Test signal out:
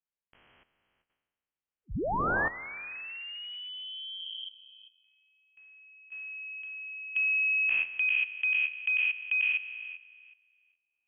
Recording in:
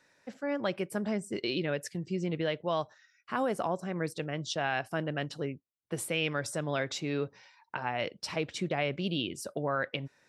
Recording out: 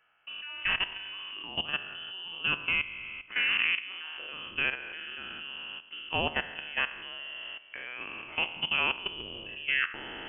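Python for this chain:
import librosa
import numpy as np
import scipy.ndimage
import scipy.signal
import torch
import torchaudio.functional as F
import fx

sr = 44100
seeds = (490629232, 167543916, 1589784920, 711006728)

y = fx.spec_trails(x, sr, decay_s=1.68)
y = fx.hum_notches(y, sr, base_hz=50, count=2)
y = fx.vibrato(y, sr, rate_hz=13.0, depth_cents=8.9)
y = fx.level_steps(y, sr, step_db=14)
y = fx.freq_invert(y, sr, carrier_hz=3200)
y = y * 10.0 ** (1.0 / 20.0)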